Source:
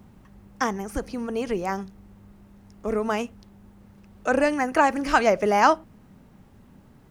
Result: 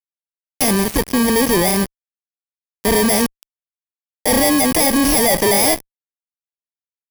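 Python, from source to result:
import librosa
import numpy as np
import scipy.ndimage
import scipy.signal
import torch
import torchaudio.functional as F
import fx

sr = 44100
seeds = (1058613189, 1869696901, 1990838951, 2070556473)

y = fx.bit_reversed(x, sr, seeds[0], block=32)
y = fx.cheby_harmonics(y, sr, harmonics=(6,), levels_db=(-20,), full_scale_db=-4.0)
y = fx.fuzz(y, sr, gain_db=41.0, gate_db=-37.0)
y = y * 10.0 ** (1.0 / 20.0)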